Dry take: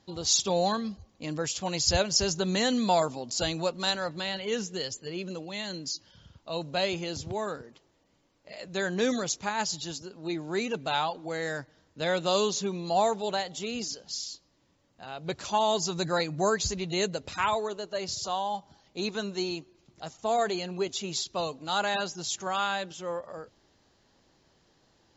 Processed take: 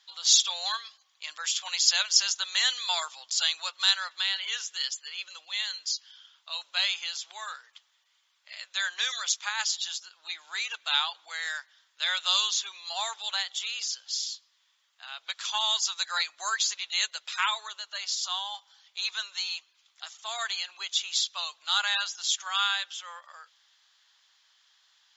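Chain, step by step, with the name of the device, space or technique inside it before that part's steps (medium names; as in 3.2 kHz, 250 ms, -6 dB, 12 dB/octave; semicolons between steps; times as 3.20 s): headphones lying on a table (high-pass 1.2 kHz 24 dB/octave; peaking EQ 3.4 kHz +9 dB 0.27 oct); trim +3.5 dB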